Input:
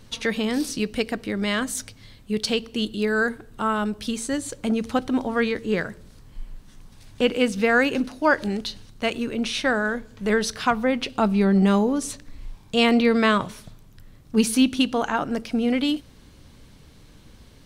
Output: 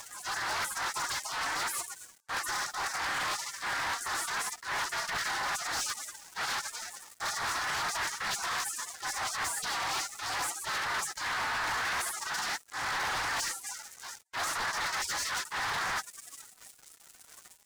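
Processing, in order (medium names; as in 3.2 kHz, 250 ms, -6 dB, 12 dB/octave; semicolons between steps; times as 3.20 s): formants flattened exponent 0.3; low-pass 2.9 kHz 12 dB/octave; spectral gate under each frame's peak -30 dB weak; high-order bell 1.2 kHz +15.5 dB; transient shaper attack -8 dB, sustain +9 dB; reverse; compression 5:1, threshold -47 dBFS, peak gain reduction 21.5 dB; reverse; waveshaping leveller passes 5; upward compressor, threshold -43 dBFS; loudspeaker Doppler distortion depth 0.37 ms; trim +3.5 dB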